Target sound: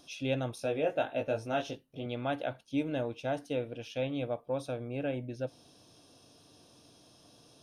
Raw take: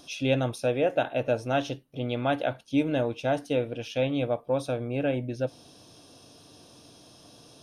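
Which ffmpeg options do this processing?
-filter_complex "[0:a]asettb=1/sr,asplit=3[a][b][c];[a]atrim=end=0.554[d];[b]atrim=start=0.55:end=2.06,asetpts=PTS-STARTPTS,afade=t=in:d=0.004:c=qsin,afade=t=out:st=1.506:d=0.004:c=qsin,asplit=2[e][f];[f]adelay=19,volume=-4dB[g];[e][g]amix=inputs=2:normalize=0,atrim=end_sample=66591[h];[c]atrim=start=2.056[i];[d][h]acrossfade=d=0.004:c1=hsin:c2=qsin[j];[j][i]acrossfade=d=0.004:c1=qsin:c2=hsin,volume=-7dB"

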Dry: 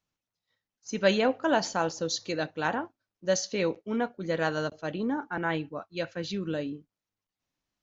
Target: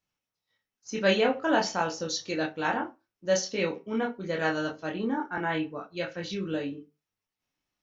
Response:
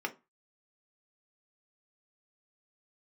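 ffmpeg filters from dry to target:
-filter_complex "[0:a]asplit=2[a][b];[1:a]atrim=start_sample=2205,highshelf=f=2.8k:g=9.5,adelay=23[c];[b][c]afir=irnorm=-1:irlink=0,volume=-6dB[d];[a][d]amix=inputs=2:normalize=0,volume=-2dB"

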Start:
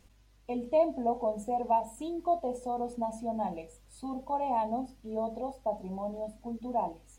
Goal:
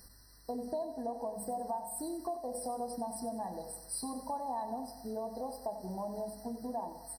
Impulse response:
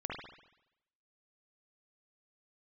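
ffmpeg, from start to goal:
-filter_complex "[0:a]acompressor=threshold=-38dB:ratio=6,aecho=1:1:93|186|279|372|465|558:0.282|0.149|0.0792|0.042|0.0222|0.0118,crystalizer=i=6:c=0,asplit=2[a][b];[1:a]atrim=start_sample=2205,adelay=137[c];[b][c]afir=irnorm=-1:irlink=0,volume=-20dB[d];[a][d]amix=inputs=2:normalize=0,afftfilt=real='re*eq(mod(floor(b*sr/1024/2000),2),0)':imag='im*eq(mod(floor(b*sr/1024/2000),2),0)':win_size=1024:overlap=0.75,volume=1dB"

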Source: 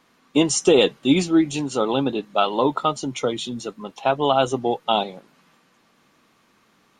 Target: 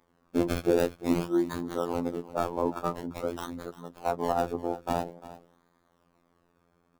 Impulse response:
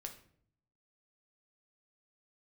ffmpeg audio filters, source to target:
-filter_complex "[0:a]acrossover=split=1600[a][b];[a]aeval=exprs='val(0)*sin(2*PI*25*n/s)':c=same[c];[b]acrusher=samples=31:mix=1:aa=0.000001:lfo=1:lforange=31:lforate=0.48[d];[c][d]amix=inputs=2:normalize=0,aecho=1:1:347:0.15,afftfilt=real='hypot(re,im)*cos(PI*b)':imag='0':win_size=2048:overlap=0.75,volume=-2.5dB"

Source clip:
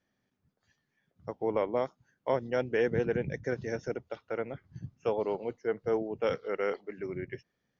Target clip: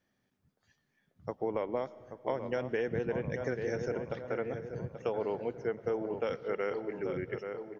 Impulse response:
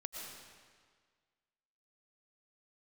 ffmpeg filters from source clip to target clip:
-filter_complex "[0:a]asplit=2[a][b];[b]adelay=832,lowpass=f=1.9k:p=1,volume=-9.5dB,asplit=2[c][d];[d]adelay=832,lowpass=f=1.9k:p=1,volume=0.47,asplit=2[e][f];[f]adelay=832,lowpass=f=1.9k:p=1,volume=0.47,asplit=2[g][h];[h]adelay=832,lowpass=f=1.9k:p=1,volume=0.47,asplit=2[i][j];[j]adelay=832,lowpass=f=1.9k:p=1,volume=0.47[k];[c][e][g][i][k]amix=inputs=5:normalize=0[l];[a][l]amix=inputs=2:normalize=0,acompressor=threshold=-30dB:ratio=6,asplit=2[m][n];[1:a]atrim=start_sample=2205,asetrate=43659,aresample=44100[o];[n][o]afir=irnorm=-1:irlink=0,volume=-13dB[p];[m][p]amix=inputs=2:normalize=0"

